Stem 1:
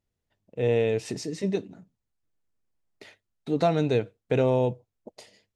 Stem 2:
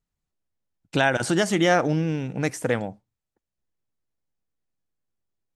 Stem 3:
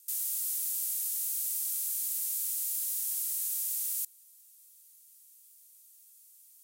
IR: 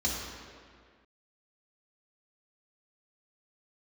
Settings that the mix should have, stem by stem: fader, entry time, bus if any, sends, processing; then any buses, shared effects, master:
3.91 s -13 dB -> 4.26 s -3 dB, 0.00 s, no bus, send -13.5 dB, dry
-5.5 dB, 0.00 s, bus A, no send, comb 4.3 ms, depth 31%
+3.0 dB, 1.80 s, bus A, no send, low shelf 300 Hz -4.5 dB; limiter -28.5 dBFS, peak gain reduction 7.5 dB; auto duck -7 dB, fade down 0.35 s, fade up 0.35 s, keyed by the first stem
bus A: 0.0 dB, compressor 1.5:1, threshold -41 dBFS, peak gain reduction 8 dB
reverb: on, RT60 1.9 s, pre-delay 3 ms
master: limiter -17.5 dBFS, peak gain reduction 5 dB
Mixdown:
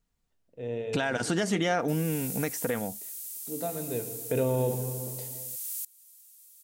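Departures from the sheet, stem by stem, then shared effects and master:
stem 2 -5.5 dB -> +4.5 dB; stem 3: missing limiter -28.5 dBFS, peak gain reduction 7.5 dB

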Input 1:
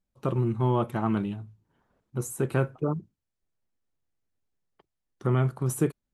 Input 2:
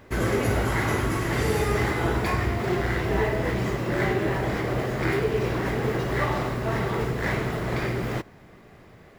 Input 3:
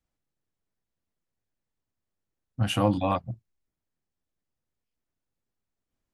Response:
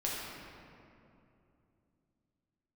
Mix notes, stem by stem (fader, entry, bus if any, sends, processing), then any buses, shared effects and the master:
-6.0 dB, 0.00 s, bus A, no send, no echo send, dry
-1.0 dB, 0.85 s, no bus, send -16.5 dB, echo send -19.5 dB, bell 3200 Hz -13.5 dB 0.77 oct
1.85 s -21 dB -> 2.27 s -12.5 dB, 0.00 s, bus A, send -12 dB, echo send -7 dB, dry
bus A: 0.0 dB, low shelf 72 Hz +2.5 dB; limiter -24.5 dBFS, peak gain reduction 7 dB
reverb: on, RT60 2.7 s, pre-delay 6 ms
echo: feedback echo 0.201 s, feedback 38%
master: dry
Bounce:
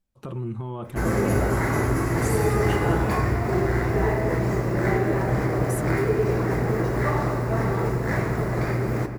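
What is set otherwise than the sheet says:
stem 1 -6.0 dB -> +1.5 dB; reverb return +7.0 dB

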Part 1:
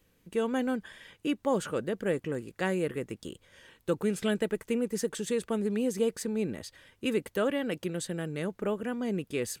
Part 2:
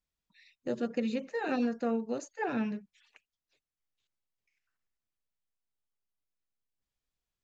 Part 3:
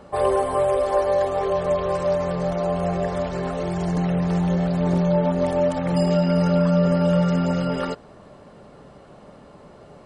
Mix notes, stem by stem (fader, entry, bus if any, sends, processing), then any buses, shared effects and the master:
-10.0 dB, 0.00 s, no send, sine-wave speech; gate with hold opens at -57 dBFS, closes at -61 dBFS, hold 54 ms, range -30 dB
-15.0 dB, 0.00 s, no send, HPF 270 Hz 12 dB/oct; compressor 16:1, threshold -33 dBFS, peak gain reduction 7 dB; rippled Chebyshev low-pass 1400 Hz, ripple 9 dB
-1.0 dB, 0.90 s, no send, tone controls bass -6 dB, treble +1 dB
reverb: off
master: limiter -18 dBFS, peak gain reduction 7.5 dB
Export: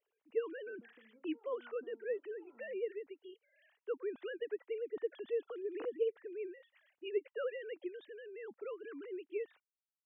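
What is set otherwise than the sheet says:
stem 1: missing gate with hold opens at -57 dBFS, closes at -61 dBFS, hold 54 ms, range -30 dB; stem 2 -15.0 dB -> -22.0 dB; stem 3: muted

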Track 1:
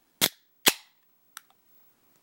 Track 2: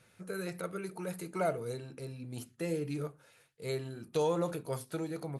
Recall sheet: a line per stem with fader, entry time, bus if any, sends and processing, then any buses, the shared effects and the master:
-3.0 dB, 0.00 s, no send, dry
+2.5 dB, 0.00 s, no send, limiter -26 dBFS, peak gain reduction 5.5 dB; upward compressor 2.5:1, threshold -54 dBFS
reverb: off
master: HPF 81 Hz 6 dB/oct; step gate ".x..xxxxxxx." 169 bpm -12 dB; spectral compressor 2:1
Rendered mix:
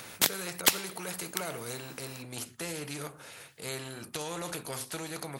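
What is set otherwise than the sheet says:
stem 2 +2.5 dB -> -4.0 dB; master: missing step gate ".x..xxxxxxx." 169 bpm -12 dB

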